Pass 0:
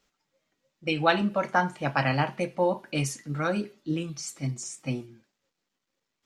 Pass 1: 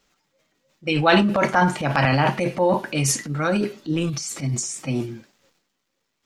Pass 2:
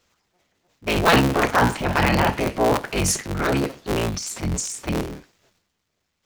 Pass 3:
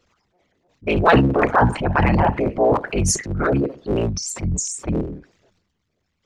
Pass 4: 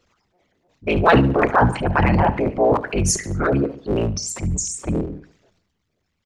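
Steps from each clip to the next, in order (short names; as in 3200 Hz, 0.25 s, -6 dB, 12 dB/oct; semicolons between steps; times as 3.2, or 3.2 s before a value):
transient shaper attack -2 dB, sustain +11 dB; gain +5.5 dB
cycle switcher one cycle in 3, inverted
formant sharpening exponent 2; gain +2.5 dB
feedback echo 72 ms, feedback 42%, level -18 dB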